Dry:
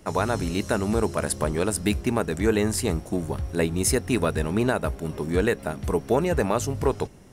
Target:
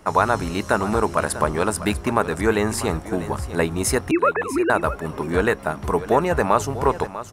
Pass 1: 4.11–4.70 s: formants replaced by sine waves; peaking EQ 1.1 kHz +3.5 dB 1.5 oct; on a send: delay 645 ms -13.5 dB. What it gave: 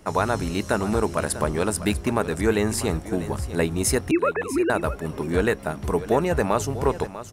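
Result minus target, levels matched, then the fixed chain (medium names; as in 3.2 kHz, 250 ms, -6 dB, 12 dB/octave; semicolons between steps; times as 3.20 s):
1 kHz band -3.5 dB
4.11–4.70 s: formants replaced by sine waves; peaking EQ 1.1 kHz +10.5 dB 1.5 oct; on a send: delay 645 ms -13.5 dB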